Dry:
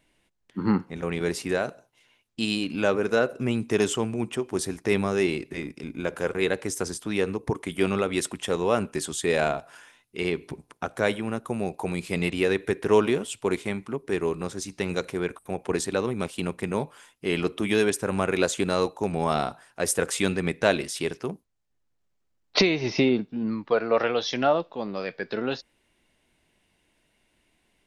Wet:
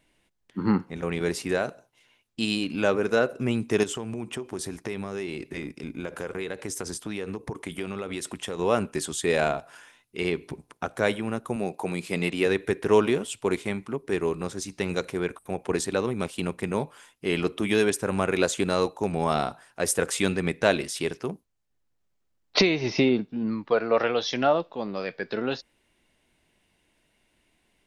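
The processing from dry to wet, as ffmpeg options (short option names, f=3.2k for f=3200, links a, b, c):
-filter_complex "[0:a]asettb=1/sr,asplit=3[a][b][c];[a]atrim=end=3.834[d];[b]atrim=start=3.83:end=8.59,asetpts=PTS-STARTPTS,afade=t=in:d=0.004:c=qsin,afade=t=out:st=4.756:d=0.004:c=qsin,acompressor=threshold=-28dB:ratio=6:attack=3.2:release=140:knee=1:detection=peak[e];[c]atrim=start=8.586[f];[d][e]acrossfade=d=0.004:c1=hsin:c2=qsin[g];[g][f]acrossfade=d=0.004:c1=qsin:c2=hsin,asettb=1/sr,asplit=3[h][i][j];[h]atrim=end=11.564[k];[i]atrim=start=11.56:end=12.46,asetpts=PTS-STARTPTS,afade=t=in:d=0.004:c=qsin,afade=t=out:st=0.896:d=0.004:c=qsin,highpass=140[l];[j]atrim=start=12.456[m];[k][l]acrossfade=d=0.004:c1=hsin:c2=qsin[n];[n][m]acrossfade=d=0.004:c1=qsin:c2=hsin"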